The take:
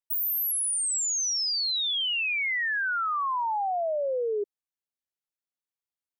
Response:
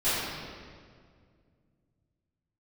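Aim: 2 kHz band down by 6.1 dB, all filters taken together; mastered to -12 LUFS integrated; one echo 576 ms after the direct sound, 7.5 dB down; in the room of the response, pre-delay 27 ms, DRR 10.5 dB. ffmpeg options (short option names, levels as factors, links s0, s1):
-filter_complex "[0:a]equalizer=f=2000:t=o:g=-8,aecho=1:1:576:0.422,asplit=2[s0][s1];[1:a]atrim=start_sample=2205,adelay=27[s2];[s1][s2]afir=irnorm=-1:irlink=0,volume=0.0668[s3];[s0][s3]amix=inputs=2:normalize=0,volume=5.31"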